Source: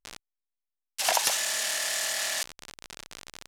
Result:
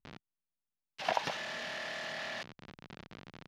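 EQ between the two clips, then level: distance through air 280 m; peaking EQ 160 Hz +13 dB 2 oct; -4.5 dB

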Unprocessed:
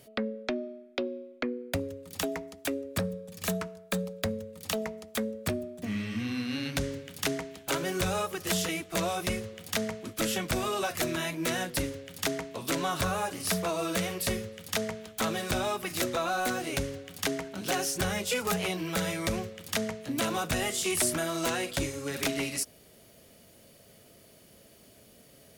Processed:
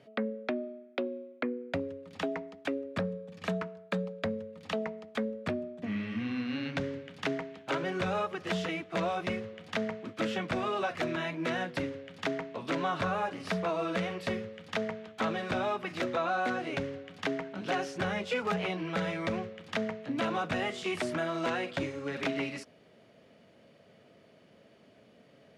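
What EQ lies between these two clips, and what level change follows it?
band-pass 140–2600 Hz; peaking EQ 360 Hz -2.5 dB 0.37 oct; 0.0 dB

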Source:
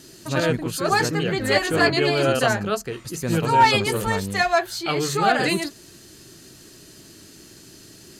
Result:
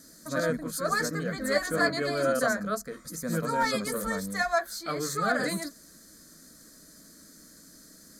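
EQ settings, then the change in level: treble shelf 11 kHz +4 dB; static phaser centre 560 Hz, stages 8; -4.0 dB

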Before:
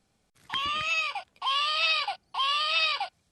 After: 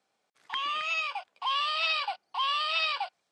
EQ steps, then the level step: high-pass 630 Hz 12 dB/octave; low-pass 9.1 kHz 12 dB/octave; tilt EQ -2 dB/octave; 0.0 dB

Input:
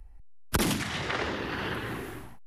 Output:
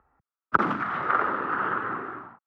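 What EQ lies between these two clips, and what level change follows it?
high-pass 190 Hz 12 dB/octave; resonant low-pass 1.3 kHz, resonance Q 6.4; 0.0 dB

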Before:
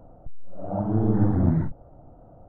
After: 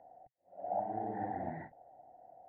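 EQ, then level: two resonant band-passes 1.2 kHz, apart 1.3 oct; band-stop 1.3 kHz, Q 23; +3.0 dB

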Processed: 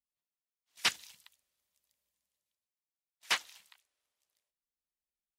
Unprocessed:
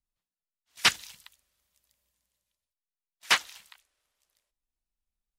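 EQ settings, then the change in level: high-pass 160 Hz 6 dB/octave; peaking EQ 1.4 kHz -2.5 dB; -7.0 dB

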